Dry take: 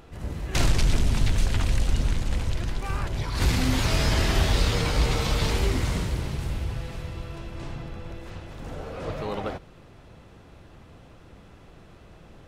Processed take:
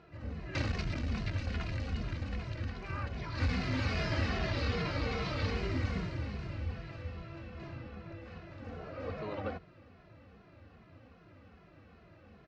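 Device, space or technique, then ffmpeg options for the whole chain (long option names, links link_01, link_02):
barber-pole flanger into a guitar amplifier: -filter_complex "[0:a]asplit=2[link_01][link_02];[link_02]adelay=2.4,afreqshift=-2.5[link_03];[link_01][link_03]amix=inputs=2:normalize=1,asoftclip=type=tanh:threshold=-16dB,highpass=85,equalizer=frequency=85:width_type=q:width=4:gain=4,equalizer=frequency=140:width_type=q:width=4:gain=-6,equalizer=frequency=400:width_type=q:width=4:gain=-5,equalizer=frequency=880:width_type=q:width=4:gain=-7,equalizer=frequency=3400:width_type=q:width=4:gain=-10,lowpass=frequency=4400:width=0.5412,lowpass=frequency=4400:width=1.3066,asettb=1/sr,asplit=3[link_04][link_05][link_06];[link_04]atrim=end=4.304[link_07];[link_05]atrim=start=4.3:end=5.57,asetpts=PTS-STARTPTS,afade=type=in:duration=0.004:curve=qsin,afade=type=out:start_time=1.266:duration=0.004:curve=qsin,lowpass=8100[link_08];[link_06]atrim=start=5.566[link_09];[link_07][link_08]acrossfade=duration=0.004:curve1=hsin:curve2=qsin[link_10];[link_10][link_09]acrossfade=duration=0.004:curve1=qsin:curve2=hsin,volume=-2dB"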